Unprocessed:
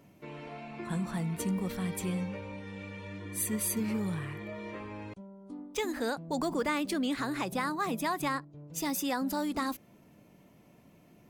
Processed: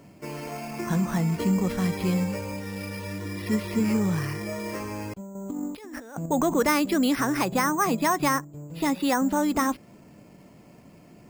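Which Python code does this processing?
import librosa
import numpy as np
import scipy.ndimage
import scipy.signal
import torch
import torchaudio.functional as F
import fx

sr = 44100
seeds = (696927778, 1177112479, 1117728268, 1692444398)

y = fx.over_compress(x, sr, threshold_db=-45.0, ratio=-1.0, at=(5.35, 6.26))
y = np.repeat(scipy.signal.resample_poly(y, 1, 6), 6)[:len(y)]
y = F.gain(torch.from_numpy(y), 8.5).numpy()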